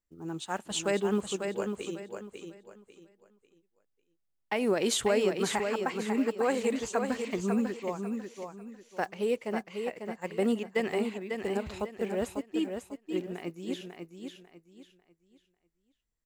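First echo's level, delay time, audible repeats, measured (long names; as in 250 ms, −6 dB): −6.0 dB, 546 ms, 3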